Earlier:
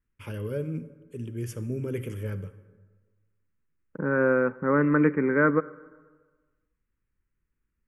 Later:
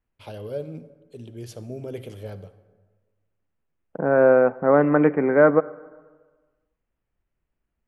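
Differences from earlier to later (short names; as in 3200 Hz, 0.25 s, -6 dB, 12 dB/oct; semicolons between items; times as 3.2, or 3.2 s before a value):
first voice -6.0 dB; master: remove fixed phaser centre 1700 Hz, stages 4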